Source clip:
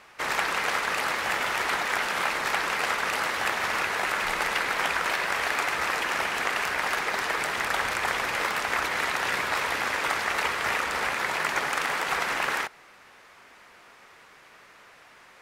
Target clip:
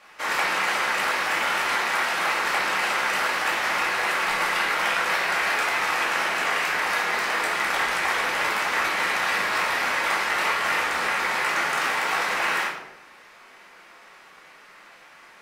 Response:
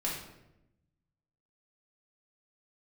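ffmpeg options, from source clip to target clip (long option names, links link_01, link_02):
-filter_complex "[0:a]lowshelf=frequency=260:gain=-10.5[link_01];[1:a]atrim=start_sample=2205,asetrate=48510,aresample=44100[link_02];[link_01][link_02]afir=irnorm=-1:irlink=0"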